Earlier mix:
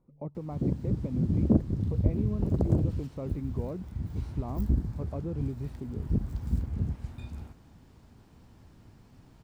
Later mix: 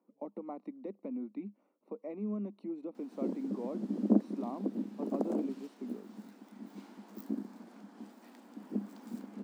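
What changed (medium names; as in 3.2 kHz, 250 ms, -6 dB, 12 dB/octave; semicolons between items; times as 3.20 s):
background: entry +2.60 s; master: add rippled Chebyshev high-pass 200 Hz, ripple 3 dB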